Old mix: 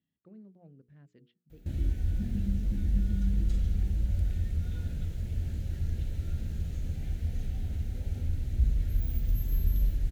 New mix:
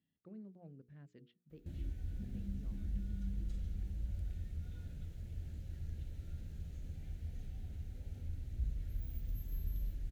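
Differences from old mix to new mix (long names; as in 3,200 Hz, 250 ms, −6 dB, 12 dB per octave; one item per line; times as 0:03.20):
background −11.0 dB
reverb: off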